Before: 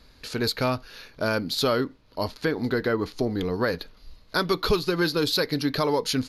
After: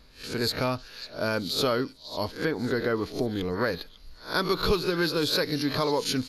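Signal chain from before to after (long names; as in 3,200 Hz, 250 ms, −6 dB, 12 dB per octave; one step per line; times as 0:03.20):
peak hold with a rise ahead of every peak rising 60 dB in 0.32 s
echo through a band-pass that steps 547 ms, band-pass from 4,500 Hz, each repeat 0.7 octaves, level −11.5 dB
level −3 dB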